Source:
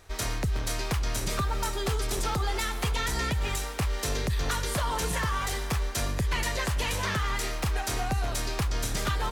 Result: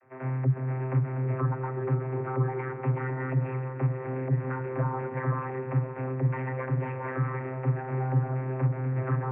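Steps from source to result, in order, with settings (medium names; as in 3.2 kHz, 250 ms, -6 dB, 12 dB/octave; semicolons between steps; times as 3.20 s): steep low-pass 2.3 kHz 72 dB/octave; vocoder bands 32, saw 130 Hz; feedback echo behind a low-pass 525 ms, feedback 57%, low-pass 600 Hz, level -5 dB; trim +5 dB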